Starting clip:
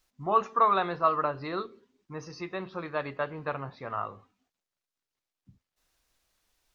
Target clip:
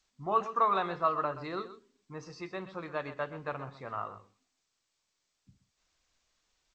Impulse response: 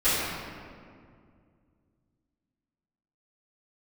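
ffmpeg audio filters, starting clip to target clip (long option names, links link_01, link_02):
-af "aecho=1:1:126:0.211,volume=-4dB" -ar 16000 -c:a g722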